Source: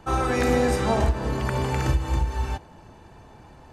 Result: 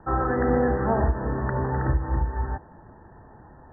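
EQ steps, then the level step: Chebyshev low-pass 1900 Hz, order 10; 0.0 dB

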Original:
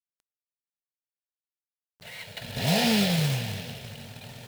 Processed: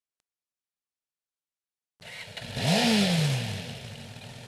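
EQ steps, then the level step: LPF 11000 Hz 24 dB/oct; 0.0 dB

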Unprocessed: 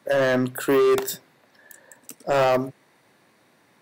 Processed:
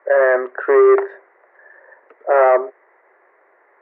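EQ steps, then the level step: Chebyshev band-pass 380–2000 Hz, order 4; +7.5 dB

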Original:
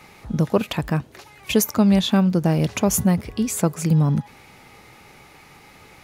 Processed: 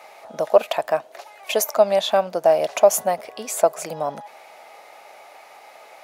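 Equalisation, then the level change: resonant high-pass 640 Hz, resonance Q 6.2; -1.0 dB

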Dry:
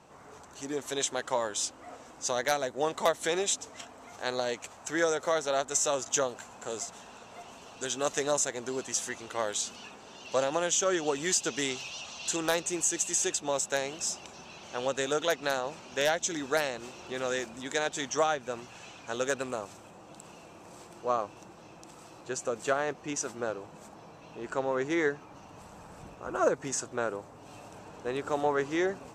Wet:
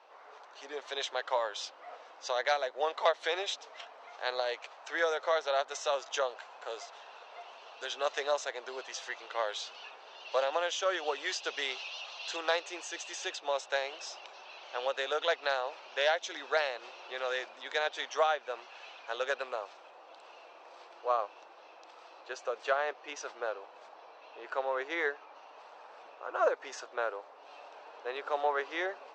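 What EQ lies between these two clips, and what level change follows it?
HPF 500 Hz 24 dB/oct; air absorption 110 m; resonant high shelf 6100 Hz -11 dB, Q 1.5; 0.0 dB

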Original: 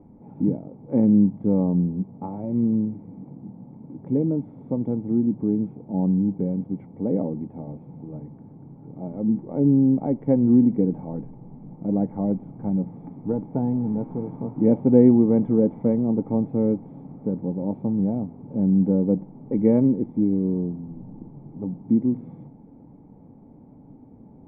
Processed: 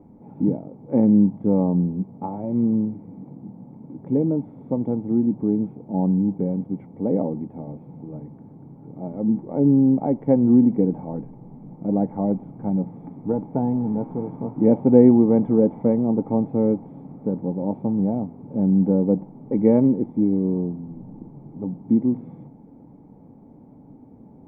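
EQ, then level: low shelf 110 Hz -5 dB; dynamic EQ 810 Hz, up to +4 dB, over -39 dBFS, Q 1.5; +2.0 dB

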